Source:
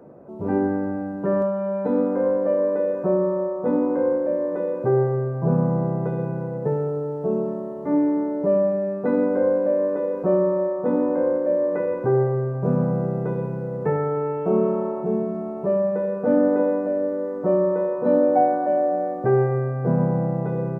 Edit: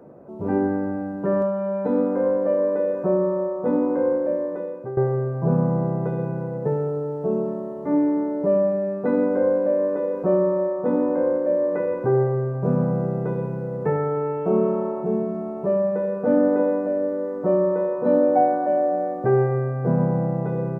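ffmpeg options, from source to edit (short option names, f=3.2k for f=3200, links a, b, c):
-filter_complex "[0:a]asplit=2[a][b];[a]atrim=end=4.97,asetpts=PTS-STARTPTS,afade=t=out:st=4.3:d=0.67:silence=0.177828[c];[b]atrim=start=4.97,asetpts=PTS-STARTPTS,afade=t=in:d=0.004:c=hsin:silence=0.177828[d];[c][d]concat=n=2:v=0:a=1"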